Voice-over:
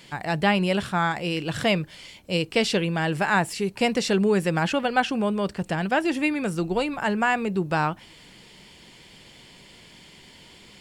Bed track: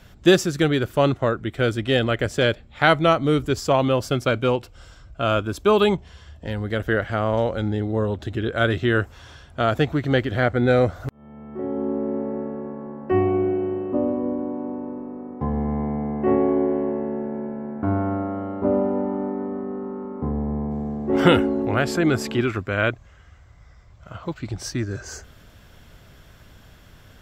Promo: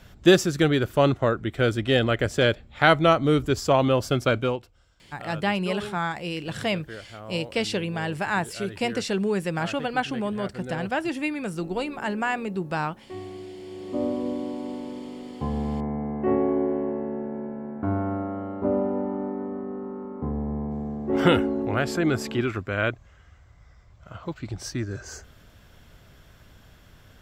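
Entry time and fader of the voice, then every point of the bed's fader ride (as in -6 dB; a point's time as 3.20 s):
5.00 s, -4.0 dB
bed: 4.38 s -1 dB
4.85 s -18 dB
13.57 s -18 dB
14.03 s -3.5 dB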